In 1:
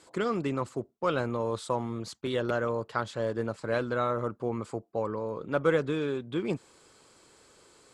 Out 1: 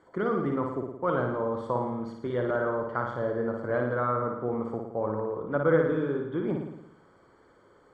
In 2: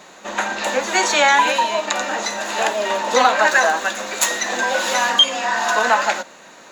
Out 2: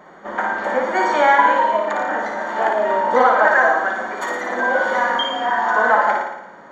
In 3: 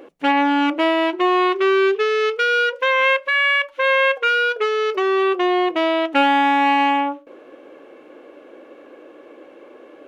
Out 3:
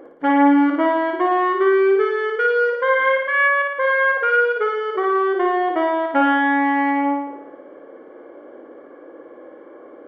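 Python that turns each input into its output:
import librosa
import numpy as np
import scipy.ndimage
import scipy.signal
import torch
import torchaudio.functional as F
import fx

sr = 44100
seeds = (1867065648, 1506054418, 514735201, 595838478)

y = scipy.signal.savgol_filter(x, 41, 4, mode='constant')
y = fx.room_flutter(y, sr, wall_m=9.7, rt60_s=0.84)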